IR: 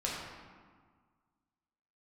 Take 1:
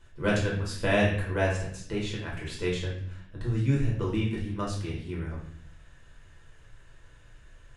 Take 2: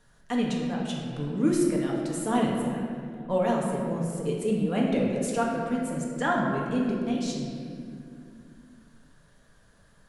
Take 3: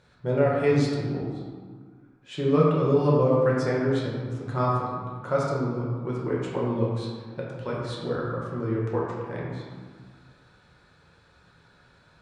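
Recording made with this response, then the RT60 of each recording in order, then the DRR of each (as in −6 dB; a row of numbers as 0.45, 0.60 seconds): 3; 0.60, 2.3, 1.7 seconds; −5.0, −3.0, −5.5 decibels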